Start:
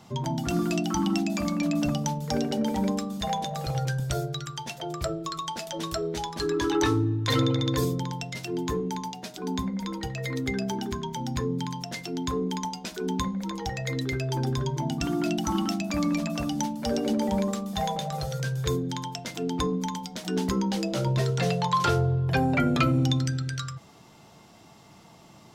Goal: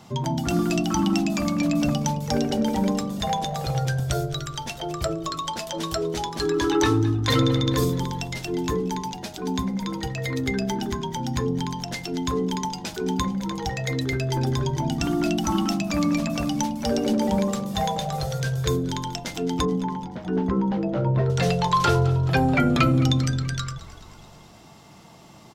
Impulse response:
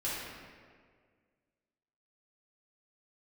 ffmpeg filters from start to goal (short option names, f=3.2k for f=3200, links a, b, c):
-filter_complex "[0:a]asettb=1/sr,asplit=3[a][b][c];[a]atrim=end=19.654[d];[b]atrim=start=19.65:end=21.3,asetpts=PTS-STARTPTS,afade=t=in:d=0.004:c=qsin,afade=t=out:st=1.646:d=0.004:c=qsin,lowpass=1.4k[e];[c]atrim=start=21.296[f];[d][e]acrossfade=d=0.004:c1=hsin:c2=qsin[g];[g][f]acrossfade=d=0.004:c1=qsin:c2=hsin,asplit=2[h][i];[i]asplit=6[j][k][l][m][n][o];[j]adelay=215,afreqshift=-47,volume=-17dB[p];[k]adelay=430,afreqshift=-94,volume=-21.4dB[q];[l]adelay=645,afreqshift=-141,volume=-25.9dB[r];[m]adelay=860,afreqshift=-188,volume=-30.3dB[s];[n]adelay=1075,afreqshift=-235,volume=-34.7dB[t];[o]adelay=1290,afreqshift=-282,volume=-39.2dB[u];[p][q][r][s][t][u]amix=inputs=6:normalize=0[v];[h][v]amix=inputs=2:normalize=0,volume=3.5dB"